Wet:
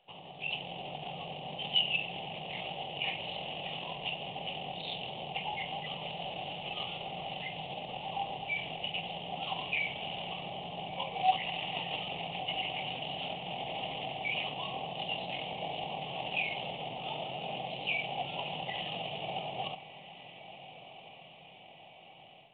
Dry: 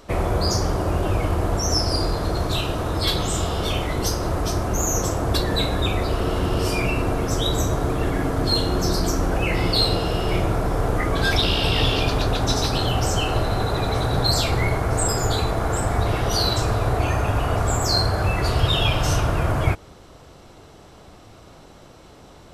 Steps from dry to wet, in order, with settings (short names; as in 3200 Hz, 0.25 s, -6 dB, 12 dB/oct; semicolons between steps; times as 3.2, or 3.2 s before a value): median filter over 15 samples; frequency shift -330 Hz; limiter -15.5 dBFS, peak gain reduction 10 dB; high shelf 2100 Hz +11.5 dB; diffused feedback echo 1.417 s, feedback 56%, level -14.5 dB; spring tank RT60 2.1 s, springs 36/43 ms, chirp 75 ms, DRR 16 dB; pitch shift -9 st; double band-pass 1500 Hz, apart 1.9 oct; AGC gain up to 9.5 dB; gain -5.5 dB; µ-law 64 kbps 8000 Hz